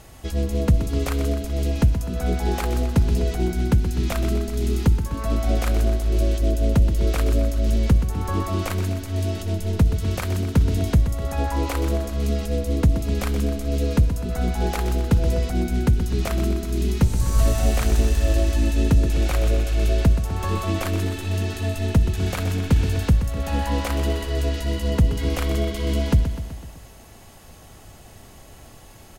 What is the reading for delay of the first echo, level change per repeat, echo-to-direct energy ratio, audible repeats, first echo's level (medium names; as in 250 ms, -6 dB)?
126 ms, -4.5 dB, -8.0 dB, 5, -10.0 dB